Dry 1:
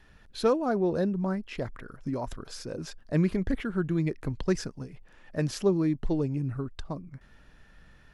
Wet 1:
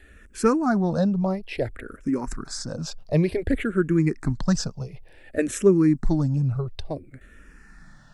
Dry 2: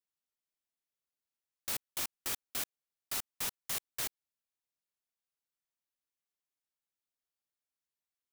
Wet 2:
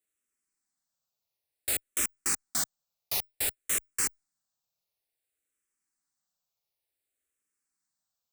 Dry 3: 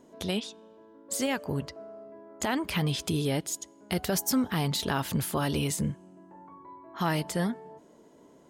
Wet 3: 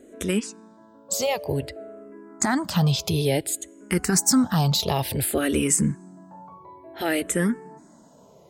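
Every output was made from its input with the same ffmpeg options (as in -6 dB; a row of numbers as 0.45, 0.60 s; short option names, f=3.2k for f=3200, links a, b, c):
-filter_complex "[0:a]equalizer=f=1k:t=o:w=0.33:g=-4,equalizer=f=3.15k:t=o:w=0.33:g=-5,equalizer=f=8k:t=o:w=0.33:g=7,asplit=2[a][b];[b]afreqshift=-0.56[c];[a][c]amix=inputs=2:normalize=1,volume=9dB"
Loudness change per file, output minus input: +6.0, +7.0, +6.5 LU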